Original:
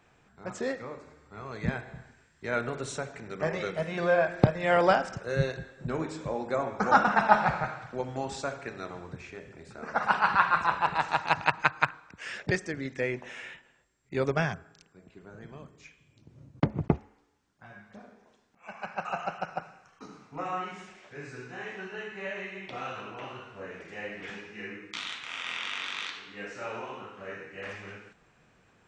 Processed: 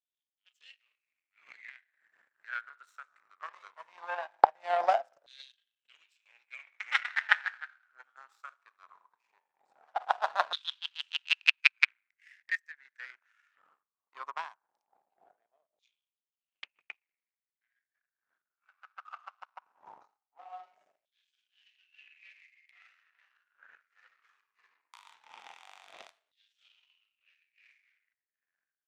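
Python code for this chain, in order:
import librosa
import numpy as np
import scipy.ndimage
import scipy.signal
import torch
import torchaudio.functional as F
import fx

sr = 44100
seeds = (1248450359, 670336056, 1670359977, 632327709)

y = fx.dmg_wind(x, sr, seeds[0], corner_hz=180.0, level_db=-39.0)
y = fx.power_curve(y, sr, exponent=2.0)
y = fx.filter_lfo_highpass(y, sr, shape='saw_down', hz=0.19, low_hz=620.0, high_hz=3600.0, q=7.4)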